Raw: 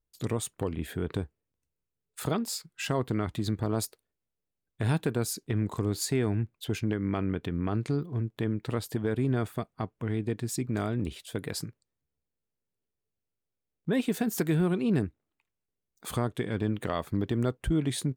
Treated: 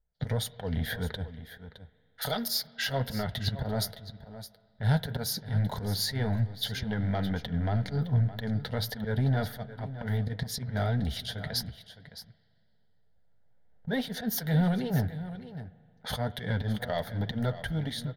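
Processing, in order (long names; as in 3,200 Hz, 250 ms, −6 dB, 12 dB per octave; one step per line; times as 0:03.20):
fade-out on the ending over 0.85 s
camcorder AGC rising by 7.5 dB per second
0:02.21–0:02.67: spectral tilt +3.5 dB per octave
in parallel at −2 dB: downward compressor 10 to 1, threshold −34 dBFS, peak gain reduction 13 dB
on the sum: volume swells 107 ms
leveller curve on the samples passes 1
brickwall limiter −19.5 dBFS, peak gain reduction 5.5 dB
phaser with its sweep stopped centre 1,700 Hz, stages 8
low-pass that shuts in the quiet parts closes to 1,500 Hz, open at −32 dBFS
flanger 1.9 Hz, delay 3.6 ms, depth 5.1 ms, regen −46%
single-tap delay 614 ms −13.5 dB
on a send at −18 dB: convolution reverb RT60 2.5 s, pre-delay 38 ms
on the sum: level +7 dB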